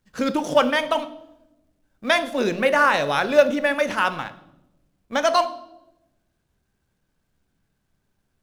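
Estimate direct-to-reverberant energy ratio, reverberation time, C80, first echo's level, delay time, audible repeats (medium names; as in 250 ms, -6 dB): 11.0 dB, 0.90 s, 18.0 dB, no echo, no echo, no echo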